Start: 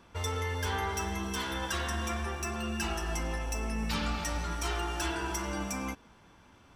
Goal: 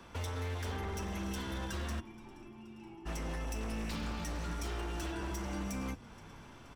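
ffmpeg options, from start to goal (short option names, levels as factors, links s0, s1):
-filter_complex "[0:a]acrossover=split=140|340[s0][s1][s2];[s0]acompressor=threshold=0.00794:ratio=4[s3];[s1]acompressor=threshold=0.00631:ratio=4[s4];[s2]acompressor=threshold=0.00398:ratio=4[s5];[s3][s4][s5]amix=inputs=3:normalize=0,asplit=3[s6][s7][s8];[s6]afade=t=out:st=1.99:d=0.02[s9];[s7]asplit=3[s10][s11][s12];[s10]bandpass=f=300:t=q:w=8,volume=1[s13];[s11]bandpass=f=870:t=q:w=8,volume=0.501[s14];[s12]bandpass=f=2240:t=q:w=8,volume=0.355[s15];[s13][s14][s15]amix=inputs=3:normalize=0,afade=t=in:st=1.99:d=0.02,afade=t=out:st=3.05:d=0.02[s16];[s8]afade=t=in:st=3.05:d=0.02[s17];[s9][s16][s17]amix=inputs=3:normalize=0,asplit=6[s18][s19][s20][s21][s22][s23];[s19]adelay=475,afreqshift=-99,volume=0.0841[s24];[s20]adelay=950,afreqshift=-198,volume=0.0531[s25];[s21]adelay=1425,afreqshift=-297,volume=0.0335[s26];[s22]adelay=1900,afreqshift=-396,volume=0.0211[s27];[s23]adelay=2375,afreqshift=-495,volume=0.0132[s28];[s18][s24][s25][s26][s27][s28]amix=inputs=6:normalize=0,aeval=exprs='0.015*(abs(mod(val(0)/0.015+3,4)-2)-1)':c=same,volume=1.58"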